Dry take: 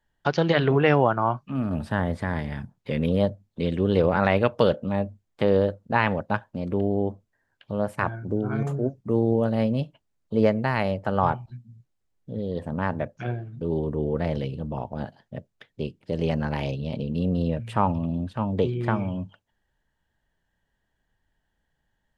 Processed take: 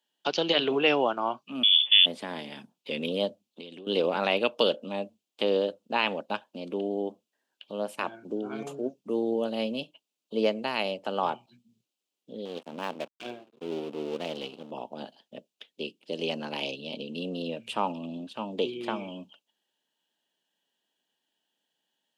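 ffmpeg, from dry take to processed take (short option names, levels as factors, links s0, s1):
-filter_complex "[0:a]asettb=1/sr,asplit=3[s0][s1][s2];[s0]atrim=end=1.634[s3];[s1]atrim=start=1.63:end=2.06,asetpts=PTS-STARTPTS,afade=t=in:d=0.004:c=qsin,afade=t=out:st=0.426:d=0.004:c=qsin,lowpass=f=3100:t=q:w=0.5098,lowpass=f=3100:t=q:w=0.6013,lowpass=f=3100:t=q:w=0.9,lowpass=f=3100:t=q:w=2.563,afreqshift=-3600[s4];[s2]atrim=start=2.056[s5];[s3][s4]acrossfade=d=0.004:c1=hsin:c2=qsin[s6];[s6][s5]acrossfade=d=0.004:c1=qsin:c2=hsin,asettb=1/sr,asplit=3[s7][s8][s9];[s7]atrim=end=3.464[s10];[s8]atrim=start=3.46:end=3.87,asetpts=PTS-STARTPTS,afade=t=in:d=0.004:c=qsin,afade=t=out:st=0.406:d=0.004:c=qsin,acompressor=threshold=0.0251:ratio=12:attack=3.2:release=140:knee=1:detection=peak[s11];[s9]atrim=start=3.866[s12];[s10][s11]acrossfade=d=0.004:c1=hsin:c2=qsin[s13];[s13][s12]acrossfade=d=0.004:c1=qsin:c2=hsin,asettb=1/sr,asplit=3[s14][s15][s16];[s14]atrim=end=12.454[s17];[s15]atrim=start=12.45:end=14.71,asetpts=PTS-STARTPTS,afade=t=in:d=0.004:c=qsin,afade=t=out:st=2.256:d=0.004:c=qsin,aeval=exprs='sgn(val(0))*max(abs(val(0))-0.0126,0)':c=same[s18];[s16]atrim=start=14.706[s19];[s17][s18]acrossfade=d=0.004:c1=hsin:c2=qsin[s20];[s20][s19]acrossfade=d=0.004:c1=qsin:c2=hsin,highpass=f=240:w=0.5412,highpass=f=240:w=1.3066,highshelf=f=2300:t=q:w=3:g=6.5,volume=0.631"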